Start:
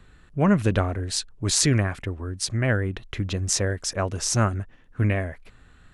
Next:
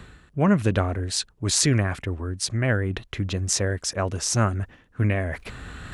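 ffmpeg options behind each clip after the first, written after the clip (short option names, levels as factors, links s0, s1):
-af "highpass=44,areverse,acompressor=mode=upward:threshold=0.0708:ratio=2.5,areverse"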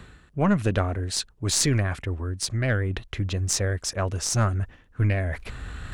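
-af "asubboost=boost=2:cutoff=110,aeval=exprs='0.794*(cos(1*acos(clip(val(0)/0.794,-1,1)))-cos(1*PI/2))+0.0562*(cos(4*acos(clip(val(0)/0.794,-1,1)))-cos(4*PI/2))+0.0708*(cos(6*acos(clip(val(0)/0.794,-1,1)))-cos(6*PI/2))':c=same,volume=0.841"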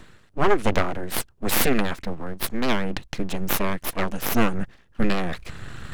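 -af "aeval=exprs='abs(val(0))':c=same,aeval=exprs='0.631*(cos(1*acos(clip(val(0)/0.631,-1,1)))-cos(1*PI/2))+0.141*(cos(6*acos(clip(val(0)/0.631,-1,1)))-cos(6*PI/2))':c=same"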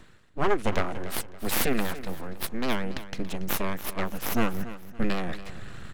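-af "aecho=1:1:282|564|846:0.188|0.064|0.0218,volume=0.562"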